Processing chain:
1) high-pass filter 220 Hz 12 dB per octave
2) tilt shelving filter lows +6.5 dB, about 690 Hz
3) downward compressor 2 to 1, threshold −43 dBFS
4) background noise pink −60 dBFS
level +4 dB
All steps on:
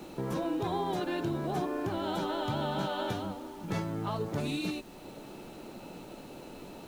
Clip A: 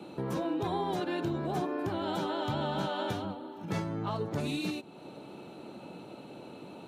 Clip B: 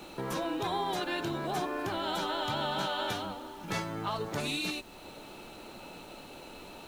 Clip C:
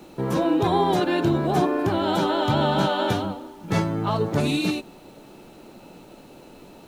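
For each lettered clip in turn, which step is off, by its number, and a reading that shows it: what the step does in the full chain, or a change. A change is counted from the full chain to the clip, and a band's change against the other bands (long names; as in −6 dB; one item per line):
4, 8 kHz band −1.5 dB
2, 125 Hz band −8.5 dB
3, average gain reduction 7.0 dB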